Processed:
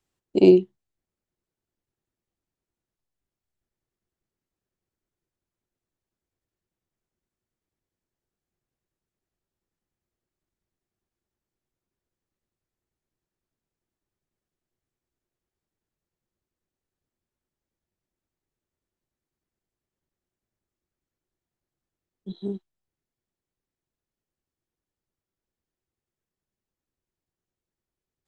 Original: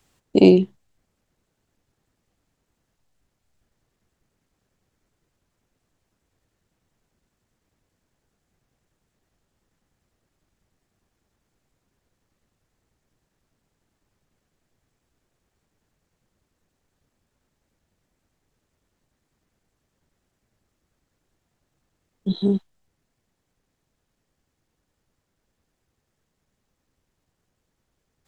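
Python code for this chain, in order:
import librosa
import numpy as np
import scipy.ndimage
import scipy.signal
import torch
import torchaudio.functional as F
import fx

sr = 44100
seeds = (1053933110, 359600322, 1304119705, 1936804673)

y = fx.peak_eq(x, sr, hz=360.0, db=7.0, octaves=0.24)
y = fx.upward_expand(y, sr, threshold_db=-27.0, expansion=1.5)
y = y * librosa.db_to_amplitude(-5.0)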